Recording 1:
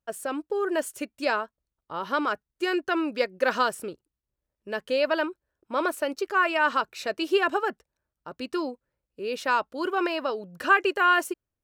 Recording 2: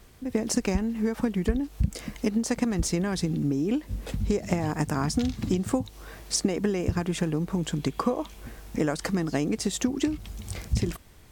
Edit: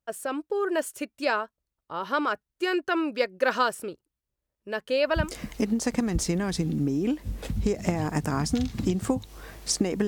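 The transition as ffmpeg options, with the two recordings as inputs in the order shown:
-filter_complex "[0:a]apad=whole_dur=10.07,atrim=end=10.07,atrim=end=5.36,asetpts=PTS-STARTPTS[a];[1:a]atrim=start=1.7:end=6.71,asetpts=PTS-STARTPTS[b];[a][b]acrossfade=d=0.3:c1=qsin:c2=qsin"

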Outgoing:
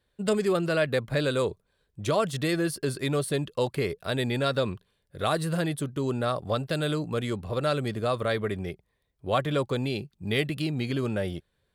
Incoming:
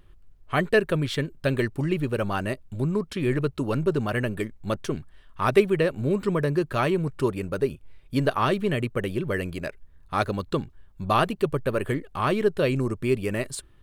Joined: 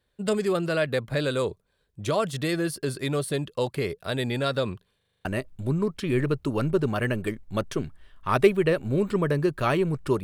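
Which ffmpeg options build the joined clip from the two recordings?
-filter_complex "[0:a]apad=whole_dur=10.23,atrim=end=10.23,asplit=7[a][b][c][d][e][f][g];[a]atrim=end=5.012[h];[b]atrim=start=4.968:end=5.012[i];[c]atrim=start=4.968:end=5.012[j];[d]atrim=start=4.968:end=5.012[k];[e]atrim=start=4.968:end=5.012[l];[f]atrim=start=4.968:end=5.012[m];[g]atrim=start=4.968:end=5.012[n];[1:a]atrim=start=2.378:end=7.36[o];[h][i]acrossfade=d=0.004:c1=hsin:c2=hsin[p];[p][j]acrossfade=d=0.004:c1=hsin:c2=hsin[q];[q][k]acrossfade=d=0.004:c1=hsin:c2=hsin[r];[r][l]acrossfade=d=0.004:c1=hsin:c2=hsin[s];[s][m]acrossfade=d=0.004:c1=hsin:c2=hsin[t];[t][n]acrossfade=d=0.004:c1=hsin:c2=hsin[u];[u][o]acrossfade=d=0.004:c1=hsin:c2=hsin"

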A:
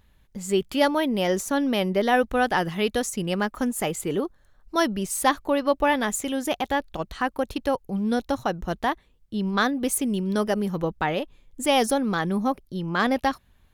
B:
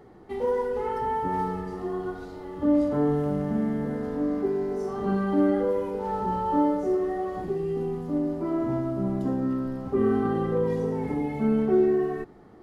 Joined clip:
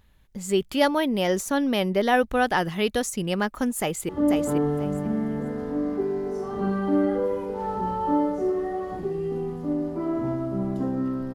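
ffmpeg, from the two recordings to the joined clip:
-filter_complex "[0:a]apad=whole_dur=11.34,atrim=end=11.34,atrim=end=4.092[a];[1:a]atrim=start=2.538:end=9.79[b];[a][b]acrossfade=d=0.004:c1=hsin:c2=hsin,asplit=2[c][d];[d]afade=t=in:st=3.79:d=0.01,afade=t=out:st=4.09:d=0.01,aecho=0:1:490|980|1470:0.595662|0.119132|0.0238265[e];[c][e]amix=inputs=2:normalize=0"

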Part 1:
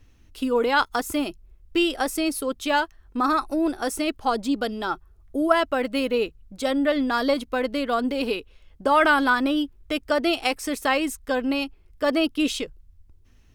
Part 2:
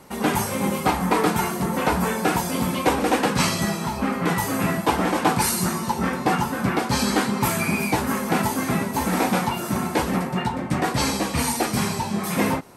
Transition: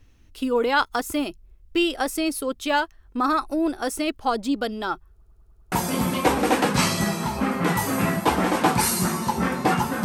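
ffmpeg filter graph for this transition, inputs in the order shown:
-filter_complex "[0:a]apad=whole_dur=10.04,atrim=end=10.04,asplit=6[a][b][c][d][e][f];[a]atrim=end=5.222[g];[b]atrim=start=5.118:end=5.222[h];[c]atrim=start=5.118:end=5.222[i];[d]atrim=start=5.118:end=5.222[j];[e]atrim=start=5.118:end=5.222[k];[f]atrim=start=5.118:end=5.222[l];[1:a]atrim=start=2.328:end=6.65[m];[g][h]acrossfade=d=0.004:c1=hsin:c2=hsin[n];[n][i]acrossfade=d=0.004:c1=hsin:c2=hsin[o];[o][j]acrossfade=d=0.004:c1=hsin:c2=hsin[p];[p][k]acrossfade=d=0.004:c1=hsin:c2=hsin[q];[q][l]acrossfade=d=0.004:c1=hsin:c2=hsin[r];[r][m]acrossfade=d=0.004:c1=hsin:c2=hsin"

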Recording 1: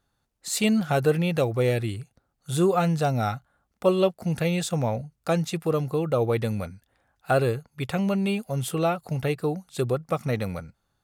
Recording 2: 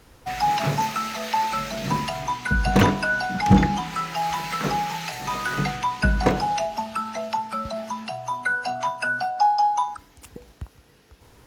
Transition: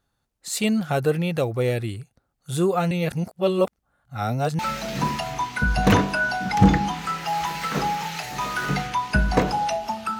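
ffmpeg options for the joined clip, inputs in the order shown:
-filter_complex "[0:a]apad=whole_dur=10.19,atrim=end=10.19,asplit=2[a][b];[a]atrim=end=2.912[c];[b]atrim=start=2.908:end=4.592,asetpts=PTS-STARTPTS,areverse[d];[1:a]atrim=start=1.478:end=7.08[e];[c][d]acrossfade=d=0.004:c1=hsin:c2=hsin[f];[f][e]acrossfade=d=0.004:c1=hsin:c2=hsin"

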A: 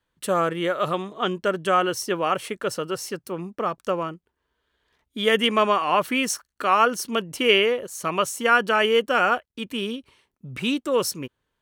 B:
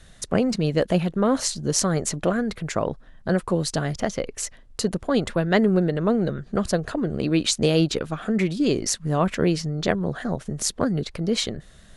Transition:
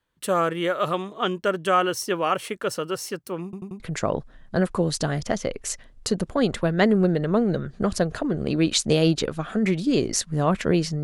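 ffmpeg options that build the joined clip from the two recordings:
-filter_complex "[0:a]apad=whole_dur=11.03,atrim=end=11.03,asplit=4[a][b][c][d];[a]atrim=end=3.532[e];[b]atrim=start=3.438:end=3.532[f];[c]atrim=start=3.438:end=3.532[g];[d]atrim=start=3.438:end=3.532[h];[1:a]atrim=start=2.528:end=9.76[i];[e][f]acrossfade=d=0.004:c1=hsin:c2=hsin[j];[j][g]acrossfade=d=0.004:c1=hsin:c2=hsin[k];[k][h]acrossfade=d=0.004:c1=hsin:c2=hsin[l];[l][i]acrossfade=d=0.004:c1=hsin:c2=hsin"

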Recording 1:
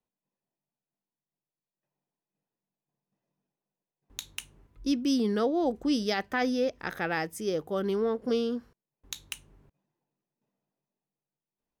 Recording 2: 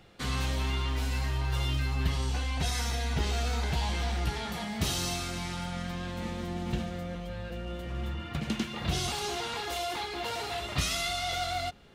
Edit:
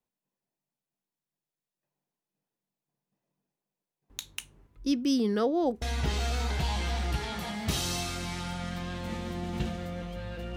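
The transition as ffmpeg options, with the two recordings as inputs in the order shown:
-filter_complex "[0:a]apad=whole_dur=10.56,atrim=end=10.56,atrim=end=5.822[a];[1:a]atrim=start=2.948:end=7.69[b];[a][b]acrossfade=d=0.004:c1=hsin:c2=hsin"

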